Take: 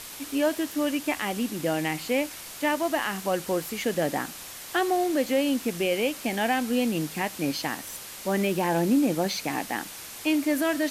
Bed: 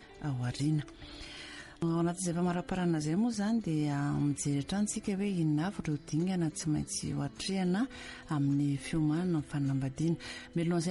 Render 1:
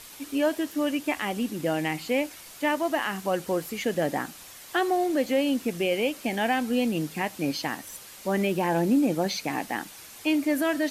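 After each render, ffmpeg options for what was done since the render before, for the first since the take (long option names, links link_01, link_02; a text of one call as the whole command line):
ffmpeg -i in.wav -af "afftdn=noise_reduction=6:noise_floor=-41" out.wav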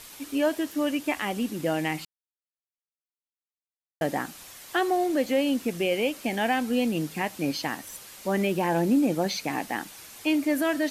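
ffmpeg -i in.wav -filter_complex "[0:a]asplit=3[link_01][link_02][link_03];[link_01]atrim=end=2.05,asetpts=PTS-STARTPTS,afade=type=out:start_time=2.046:duration=0.004:curve=hsin[link_04];[link_02]atrim=start=2.05:end=4.01,asetpts=PTS-STARTPTS,volume=0[link_05];[link_03]atrim=start=4.01,asetpts=PTS-STARTPTS,afade=type=in:duration=0.004:curve=hsin[link_06];[link_04][link_05][link_06]concat=n=3:v=0:a=1" out.wav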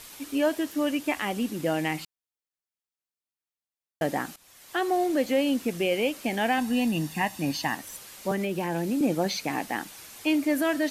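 ffmpeg -i in.wav -filter_complex "[0:a]asettb=1/sr,asplit=3[link_01][link_02][link_03];[link_01]atrim=end=6.584[link_04];[link_02]atrim=start=6.58:end=7.75,asetpts=PTS-STARTPTS,afade=type=in:duration=0.004:curve=qsin,afade=type=out:start_time=1.166:duration=0.004:curve=qsin,aecho=1:1:1.1:0.57,atrim=end_sample=51597[link_05];[link_03]atrim=start=7.746[link_06];[link_04][link_05]acrossfade=duration=0.004:curve1=hsin:curve2=qsin[link_07];[link_07][link_06]acrossfade=duration=0.004:curve1=qsin:curve2=hsin,asettb=1/sr,asplit=3[link_08][link_09][link_10];[link_08]atrim=end=8.314[link_11];[link_09]atrim=start=8.31:end=9.01,asetpts=PTS-STARTPTS,afade=type=in:duration=0.004:curve=qsin,afade=type=out:start_time=0.696:duration=0.004:curve=qsin,acrossover=split=380|1500[link_12][link_13][link_14];[link_12]acompressor=threshold=-29dB:ratio=4[link_15];[link_13]acompressor=threshold=-33dB:ratio=4[link_16];[link_14]acompressor=threshold=-37dB:ratio=4[link_17];[link_15][link_16][link_17]amix=inputs=3:normalize=0[link_18];[link_10]atrim=start=9.006[link_19];[link_11][link_18]acrossfade=duration=0.004:curve1=hsin:curve2=qsin[link_20];[link_20][link_19]acrossfade=duration=0.004:curve1=qsin:curve2=hsin,asplit=2[link_21][link_22];[link_21]atrim=end=4.36,asetpts=PTS-STARTPTS,afade=type=out:start_time=4.356:duration=0.004:curve=hsin:silence=0.149624[link_23];[link_22]atrim=start=4.36,asetpts=PTS-STARTPTS,afade=type=in:duration=0.61:silence=0.149624[link_24];[link_23][link_24]concat=n=2:v=0:a=1" out.wav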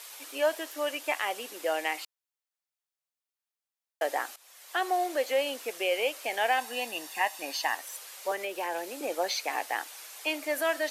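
ffmpeg -i in.wav -af "highpass=frequency=480:width=0.5412,highpass=frequency=480:width=1.3066" out.wav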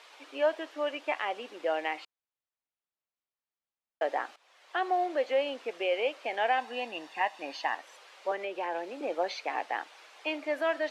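ffmpeg -i in.wav -af "lowpass=2800,equalizer=frequency=1800:width=1.5:gain=-2.5" out.wav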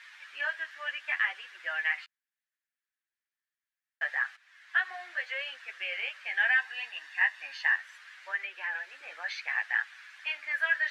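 ffmpeg -i in.wav -af "flanger=delay=7.1:depth=5.8:regen=-2:speed=0.71:shape=triangular,highpass=frequency=1700:width_type=q:width=5.5" out.wav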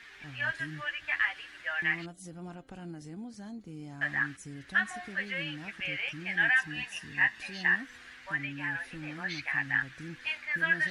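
ffmpeg -i in.wav -i bed.wav -filter_complex "[1:a]volume=-12.5dB[link_01];[0:a][link_01]amix=inputs=2:normalize=0" out.wav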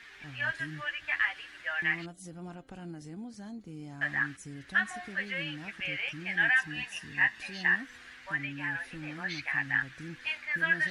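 ffmpeg -i in.wav -af anull out.wav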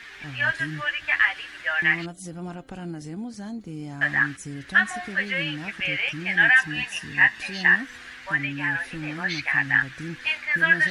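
ffmpeg -i in.wav -af "volume=8.5dB" out.wav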